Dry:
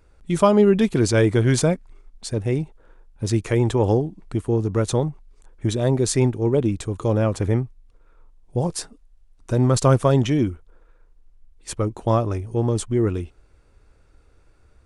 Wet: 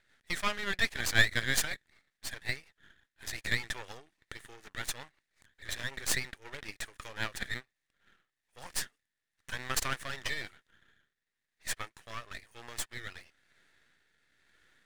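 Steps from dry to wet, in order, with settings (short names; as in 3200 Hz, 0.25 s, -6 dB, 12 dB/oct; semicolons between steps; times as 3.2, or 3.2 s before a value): resonant high-pass 1800 Hz, resonance Q 7.1; rotary speaker horn 5.5 Hz, later 1 Hz, at 7.52; half-wave rectifier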